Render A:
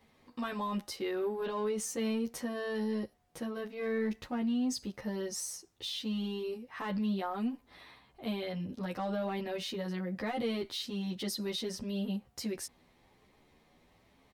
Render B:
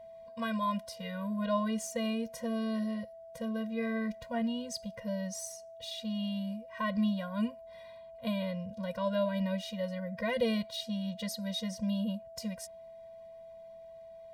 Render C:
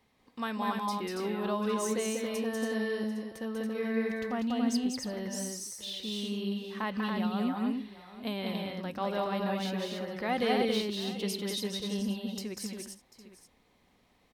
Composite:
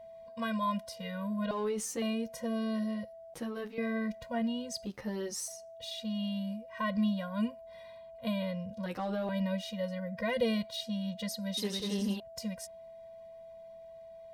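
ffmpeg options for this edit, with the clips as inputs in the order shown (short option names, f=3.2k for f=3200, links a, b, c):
-filter_complex "[0:a]asplit=4[a][b][c][d];[1:a]asplit=6[e][f][g][h][i][j];[e]atrim=end=1.512[k];[a]atrim=start=1.508:end=2.022[l];[f]atrim=start=2.018:end=3.342[m];[b]atrim=start=3.338:end=3.782[n];[g]atrim=start=3.778:end=4.862[o];[c]atrim=start=4.858:end=5.482[p];[h]atrim=start=5.478:end=8.862[q];[d]atrim=start=8.858:end=9.292[r];[i]atrim=start=9.288:end=11.572[s];[2:a]atrim=start=11.568:end=12.202[t];[j]atrim=start=12.198[u];[k][l]acrossfade=d=0.004:c1=hsin:c2=hsin[v];[v][m]acrossfade=d=0.004:c1=hsin:c2=hsin[w];[w][n]acrossfade=d=0.004:c1=hsin:c2=hsin[x];[x][o]acrossfade=d=0.004:c1=hsin:c2=hsin[y];[y][p]acrossfade=d=0.004:c1=hsin:c2=hsin[z];[z][q]acrossfade=d=0.004:c1=hsin:c2=hsin[aa];[aa][r]acrossfade=d=0.004:c1=hsin:c2=hsin[ab];[ab][s]acrossfade=d=0.004:c1=hsin:c2=hsin[ac];[ac][t]acrossfade=d=0.004:c1=hsin:c2=hsin[ad];[ad][u]acrossfade=d=0.004:c1=hsin:c2=hsin"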